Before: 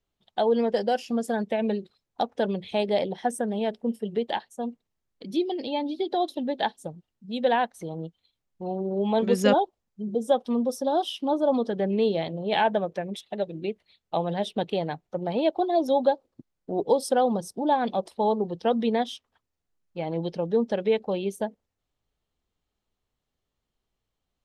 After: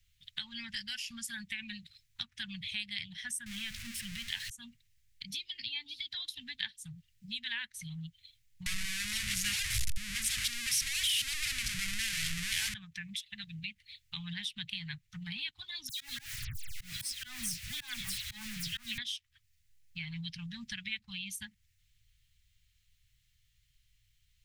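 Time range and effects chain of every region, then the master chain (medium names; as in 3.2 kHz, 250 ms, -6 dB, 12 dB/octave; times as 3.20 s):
3.46–4.50 s: jump at every zero crossing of -33.5 dBFS + treble shelf 11 kHz -8 dB
8.66–12.74 s: one-bit delta coder 64 kbps, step -17.5 dBFS + three bands expanded up and down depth 40%
15.89–18.98 s: jump at every zero crossing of -32 dBFS + phase dispersion lows, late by 123 ms, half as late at 2.9 kHz + slow attack 158 ms
whole clip: elliptic band-stop 120–2000 Hz, stop band 70 dB; compression 2:1, threshold -58 dBFS; trim +13 dB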